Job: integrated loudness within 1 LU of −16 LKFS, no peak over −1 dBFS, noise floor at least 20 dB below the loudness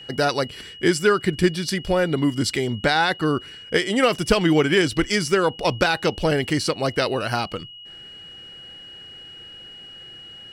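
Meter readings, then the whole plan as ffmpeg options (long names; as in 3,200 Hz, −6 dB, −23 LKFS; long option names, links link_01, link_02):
interfering tone 2,900 Hz; level of the tone −39 dBFS; integrated loudness −21.5 LKFS; sample peak −5.5 dBFS; target loudness −16.0 LKFS
→ -af "bandreject=frequency=2900:width=30"
-af "volume=5.5dB,alimiter=limit=-1dB:level=0:latency=1"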